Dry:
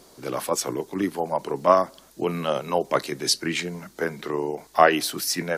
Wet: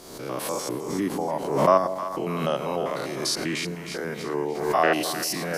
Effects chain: spectrogram pixelated in time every 100 ms; two-band feedback delay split 800 Hz, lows 172 ms, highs 311 ms, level -11 dB; swell ahead of each attack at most 57 dB/s

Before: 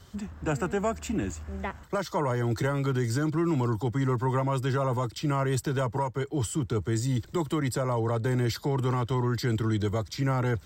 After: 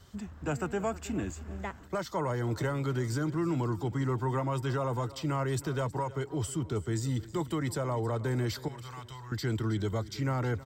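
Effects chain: 8.68–9.32 s: amplifier tone stack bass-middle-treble 10-0-10; feedback delay 318 ms, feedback 40%, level -18 dB; trim -4 dB

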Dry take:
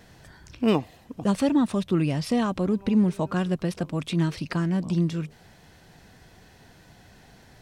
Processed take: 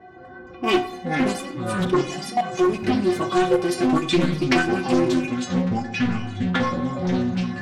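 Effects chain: single-diode clipper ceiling -16 dBFS; high-pass 120 Hz; level-controlled noise filter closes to 910 Hz, open at -26 dBFS; 3.84–4.62 s: transient shaper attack +11 dB, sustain -11 dB; in parallel at -2 dB: compression, threshold -35 dBFS, peak gain reduction 16.5 dB; on the sum: inharmonic resonator 360 Hz, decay 0.33 s, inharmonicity 0.008; sine folder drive 20 dB, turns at -12.5 dBFS; 1.38–2.59 s: level held to a coarse grid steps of 17 dB; on a send at -9.5 dB: reverberation RT60 0.65 s, pre-delay 25 ms; on the sum: ever faster or slower copies 160 ms, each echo -6 st, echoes 2; loudspeaker Doppler distortion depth 0.2 ms

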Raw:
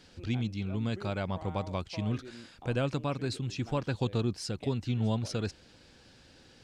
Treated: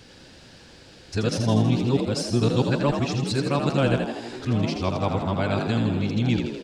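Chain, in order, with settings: reverse the whole clip; frequency-shifting echo 81 ms, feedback 61%, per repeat +55 Hz, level -6 dB; trim +8 dB

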